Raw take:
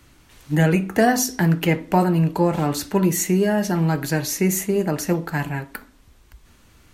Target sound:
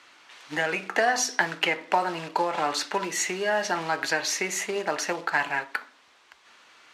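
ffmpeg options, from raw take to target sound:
-af "acompressor=threshold=0.126:ratio=16,acrusher=bits=6:mode=log:mix=0:aa=0.000001,highpass=760,lowpass=4600,volume=2"

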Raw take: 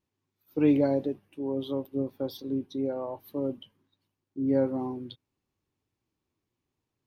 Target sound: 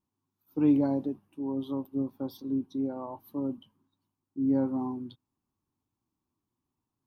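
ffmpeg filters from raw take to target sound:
-af "equalizer=f=250:t=o:w=1:g=6,equalizer=f=500:t=o:w=1:g=-8,equalizer=f=1000:t=o:w=1:g=8,equalizer=f=2000:t=o:w=1:g=-9,equalizer=f=4000:t=o:w=1:g=-4,volume=0.708"

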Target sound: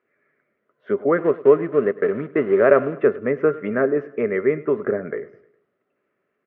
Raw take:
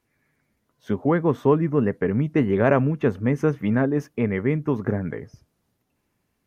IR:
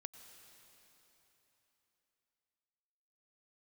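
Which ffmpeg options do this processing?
-filter_complex "[0:a]bandreject=f=348.8:t=h:w=4,bandreject=f=697.6:t=h:w=4,bandreject=f=1046.4:t=h:w=4,bandreject=f=1395.2:t=h:w=4,bandreject=f=1744:t=h:w=4,bandreject=f=2092.8:t=h:w=4,bandreject=f=2441.6:t=h:w=4,bandreject=f=2790.4:t=h:w=4,bandreject=f=3139.2:t=h:w=4,bandreject=f=3488:t=h:w=4,bandreject=f=3836.8:t=h:w=4,bandreject=f=4185.6:t=h:w=4,bandreject=f=4534.4:t=h:w=4,bandreject=f=4883.2:t=h:w=4,bandreject=f=5232:t=h:w=4,bandreject=f=5580.8:t=h:w=4,bandreject=f=5929.6:t=h:w=4,bandreject=f=6278.4:t=h:w=4,bandreject=f=6627.2:t=h:w=4,bandreject=f=6976:t=h:w=4,bandreject=f=7324.8:t=h:w=4,bandreject=f=7673.6:t=h:w=4,bandreject=f=8022.4:t=h:w=4,bandreject=f=8371.2:t=h:w=4,bandreject=f=8720:t=h:w=4,bandreject=f=9068.8:t=h:w=4,bandreject=f=9417.6:t=h:w=4,bandreject=f=9766.4:t=h:w=4,bandreject=f=10115.2:t=h:w=4,bandreject=f=10464:t=h:w=4,bandreject=f=10812.8:t=h:w=4,bandreject=f=11161.6:t=h:w=4,bandreject=f=11510.4:t=h:w=4,bandreject=f=11859.2:t=h:w=4,bandreject=f=12208:t=h:w=4,bandreject=f=12556.8:t=h:w=4,bandreject=f=12905.6:t=h:w=4,asettb=1/sr,asplit=3[s0][s1][s2];[s0]atrim=end=1.184[s3];[s1]atrim=start=1.18:end=2.94,asetpts=PTS-STARTPTS,afade=t=in:d=0.004:c=qsin,afade=t=out:st=1.756:d=0.004:c=qsin,aeval=exprs='sgn(val(0))*max(abs(val(0))-0.0158,0)':c=same[s4];[s2]atrim=start=2.936[s5];[s3][s4]acrossfade=d=0.004:c1=hsin:c2=qsin[s6];[s6][s5]acrossfade=d=0.004:c1=qsin:c2=hsin,highpass=260,equalizer=f=270:t=q:w=4:g=-3,equalizer=f=400:t=q:w=4:g=9,equalizer=f=590:t=q:w=4:g=8,equalizer=f=880:t=q:w=4:g=-10,equalizer=f=1300:t=q:w=4:g=9,equalizer=f=1900:t=q:w=4:g=4,lowpass=f=2500:w=0.5412,lowpass=f=2500:w=1.3066,aecho=1:1:103|206|309|412:0.106|0.0508|0.0244|0.0117"

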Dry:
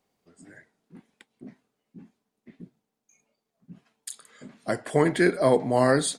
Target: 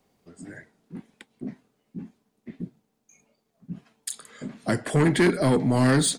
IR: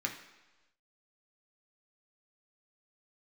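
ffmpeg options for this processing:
-filter_complex "[0:a]lowshelf=f=360:g=6,acrossover=split=390|1200[s0][s1][s2];[s1]acompressor=threshold=0.0158:ratio=6[s3];[s0][s3][s2]amix=inputs=3:normalize=0,asoftclip=type=tanh:threshold=0.106,volume=1.88"

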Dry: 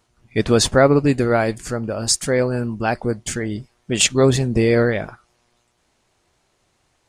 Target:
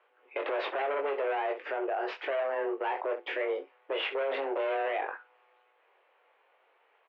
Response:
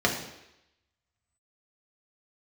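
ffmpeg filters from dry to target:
-filter_complex "[0:a]volume=10,asoftclip=hard,volume=0.1,asplit=2[s0][s1];[s1]aecho=0:1:22|65:0.531|0.141[s2];[s0][s2]amix=inputs=2:normalize=0,highpass=f=280:t=q:w=0.5412,highpass=f=280:t=q:w=1.307,lowpass=f=2700:t=q:w=0.5176,lowpass=f=2700:t=q:w=0.7071,lowpass=f=2700:t=q:w=1.932,afreqshift=140,alimiter=limit=0.0668:level=0:latency=1:release=51"

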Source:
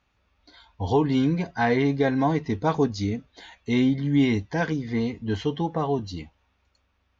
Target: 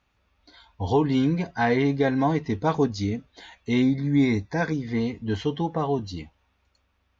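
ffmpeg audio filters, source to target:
-filter_complex "[0:a]asettb=1/sr,asplit=3[s0][s1][s2];[s0]atrim=end=3.824[s3];[s1]atrim=start=3.82:end=4.74,asetpts=PTS-STARTPTS,afade=t=in:d=0.004:c=qsin,afade=t=out:st=0.916:d=0.004:c=qsin,asuperstop=centerf=3000:order=8:qfactor=4.2[s4];[s2]atrim=start=4.736[s5];[s3][s4]acrossfade=d=0.004:c1=hsin:c2=qsin[s6];[s6][s5]acrossfade=d=0.004:c1=qsin:c2=hsin"

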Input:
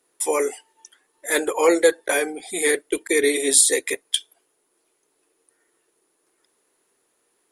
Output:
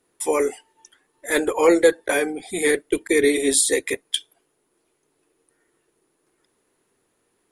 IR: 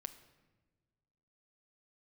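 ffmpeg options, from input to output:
-af "bass=f=250:g=12,treble=f=4000:g=-4"

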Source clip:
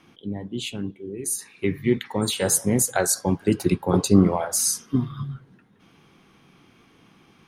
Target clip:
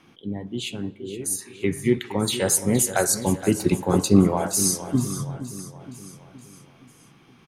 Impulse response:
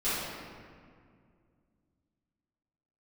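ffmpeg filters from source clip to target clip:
-filter_complex "[0:a]aecho=1:1:469|938|1407|1876|2345:0.224|0.116|0.0605|0.0315|0.0164,asplit=2[s0][s1];[1:a]atrim=start_sample=2205,asetrate=83790,aresample=44100[s2];[s1][s2]afir=irnorm=-1:irlink=0,volume=0.0631[s3];[s0][s3]amix=inputs=2:normalize=0"

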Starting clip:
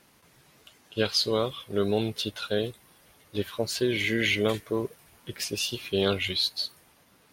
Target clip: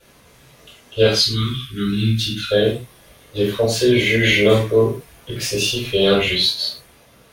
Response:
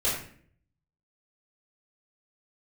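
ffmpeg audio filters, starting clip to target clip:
-filter_complex "[0:a]asettb=1/sr,asplit=3[s0][s1][s2];[s0]atrim=end=1.134[s3];[s1]atrim=start=1.13:end=2.51,asetpts=PTS-STARTPTS,afade=t=in:d=0.004:c=qsin,afade=t=out:st=1.376:d=0.004:c=qsin,asuperstop=centerf=640:order=8:qfactor=0.61[s4];[s2]atrim=start=2.506[s5];[s3][s4]acrossfade=d=0.004:c1=hsin:c2=qsin[s6];[s6][s5]acrossfade=d=0.004:c1=qsin:c2=hsin[s7];[1:a]atrim=start_sample=2205,afade=t=out:st=0.2:d=0.01,atrim=end_sample=9261[s8];[s7][s8]afir=irnorm=-1:irlink=0"

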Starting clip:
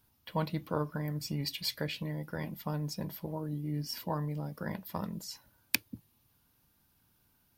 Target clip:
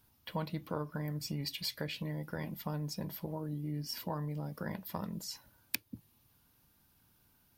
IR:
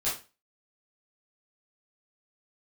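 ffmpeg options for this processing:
-af "acompressor=threshold=0.0112:ratio=2,volume=1.19"

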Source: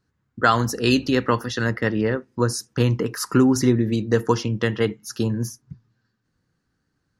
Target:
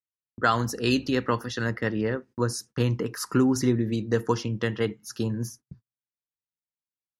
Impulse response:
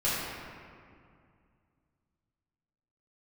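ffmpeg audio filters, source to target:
-af "agate=range=0.0178:threshold=0.00891:ratio=16:detection=peak,volume=0.562"

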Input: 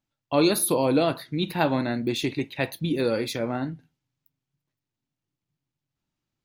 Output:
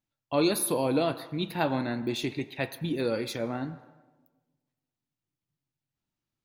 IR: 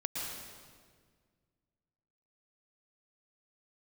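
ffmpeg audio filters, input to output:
-filter_complex "[0:a]asplit=2[s0][s1];[s1]equalizer=f=1100:w=0.52:g=12.5[s2];[1:a]atrim=start_sample=2205,asetrate=66150,aresample=44100,adelay=9[s3];[s2][s3]afir=irnorm=-1:irlink=0,volume=0.0794[s4];[s0][s4]amix=inputs=2:normalize=0,volume=0.596"

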